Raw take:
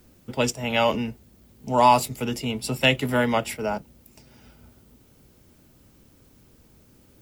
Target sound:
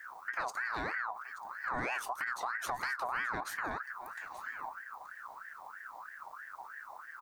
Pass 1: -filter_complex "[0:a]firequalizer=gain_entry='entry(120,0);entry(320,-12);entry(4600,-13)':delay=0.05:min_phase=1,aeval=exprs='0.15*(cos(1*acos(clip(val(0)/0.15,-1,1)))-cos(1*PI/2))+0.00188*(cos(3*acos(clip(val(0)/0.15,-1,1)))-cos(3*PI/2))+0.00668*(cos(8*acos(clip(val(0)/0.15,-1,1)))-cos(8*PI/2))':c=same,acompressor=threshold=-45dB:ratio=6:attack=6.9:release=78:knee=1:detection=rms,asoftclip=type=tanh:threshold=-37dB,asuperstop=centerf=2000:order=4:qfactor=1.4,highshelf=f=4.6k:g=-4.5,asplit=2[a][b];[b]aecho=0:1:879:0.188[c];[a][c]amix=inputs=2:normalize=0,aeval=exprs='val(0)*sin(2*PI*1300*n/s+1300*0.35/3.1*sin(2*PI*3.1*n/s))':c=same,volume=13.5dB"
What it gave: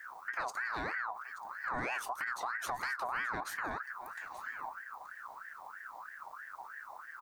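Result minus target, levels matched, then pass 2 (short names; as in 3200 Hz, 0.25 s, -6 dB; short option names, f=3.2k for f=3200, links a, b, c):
soft clip: distortion +17 dB
-filter_complex "[0:a]firequalizer=gain_entry='entry(120,0);entry(320,-12);entry(4600,-13)':delay=0.05:min_phase=1,aeval=exprs='0.15*(cos(1*acos(clip(val(0)/0.15,-1,1)))-cos(1*PI/2))+0.00188*(cos(3*acos(clip(val(0)/0.15,-1,1)))-cos(3*PI/2))+0.00668*(cos(8*acos(clip(val(0)/0.15,-1,1)))-cos(8*PI/2))':c=same,acompressor=threshold=-45dB:ratio=6:attack=6.9:release=78:knee=1:detection=rms,asoftclip=type=tanh:threshold=-28dB,asuperstop=centerf=2000:order=4:qfactor=1.4,highshelf=f=4.6k:g=-4.5,asplit=2[a][b];[b]aecho=0:1:879:0.188[c];[a][c]amix=inputs=2:normalize=0,aeval=exprs='val(0)*sin(2*PI*1300*n/s+1300*0.35/3.1*sin(2*PI*3.1*n/s))':c=same,volume=13.5dB"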